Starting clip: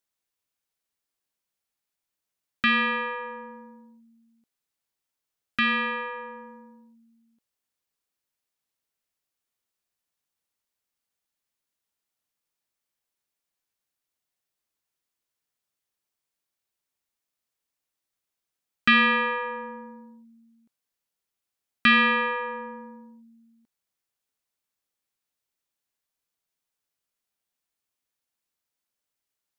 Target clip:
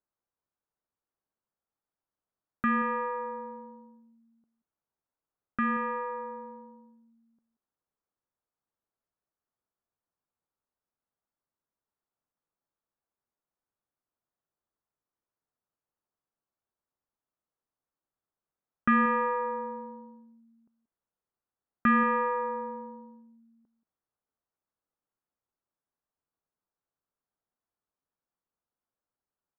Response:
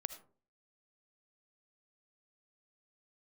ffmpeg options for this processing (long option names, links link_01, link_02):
-af "lowpass=frequency=1400:width=0.5412,lowpass=frequency=1400:width=1.3066,aecho=1:1:181:0.158"